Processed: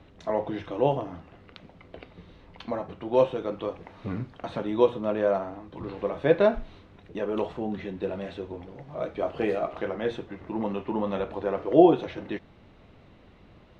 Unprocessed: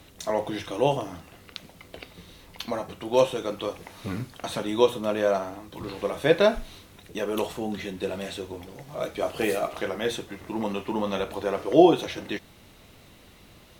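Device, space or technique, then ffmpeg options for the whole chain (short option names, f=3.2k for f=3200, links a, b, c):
phone in a pocket: -af "lowpass=3.6k,highshelf=f=2.1k:g=-10.5"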